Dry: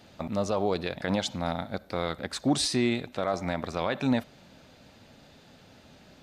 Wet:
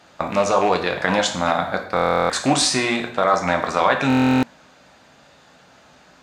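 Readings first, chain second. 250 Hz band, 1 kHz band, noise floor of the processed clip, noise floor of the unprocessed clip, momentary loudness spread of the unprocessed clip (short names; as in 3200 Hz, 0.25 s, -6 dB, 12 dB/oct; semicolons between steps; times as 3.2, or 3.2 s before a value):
+7.5 dB, +14.5 dB, -52 dBFS, -56 dBFS, 7 LU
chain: rattling part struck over -28 dBFS, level -29 dBFS; bell 7100 Hz +9 dB 0.88 oct; in parallel at -0.5 dB: compressor, threshold -37 dBFS, peak gain reduction 16 dB; on the sum: gate -36 dBFS, range -10 dB; HPF 50 Hz; bell 1200 Hz +13 dB 2.2 oct; plate-style reverb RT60 0.58 s, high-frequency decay 0.95×, DRR 3.5 dB; stuck buffer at 1.95/4.08, samples 1024, times 14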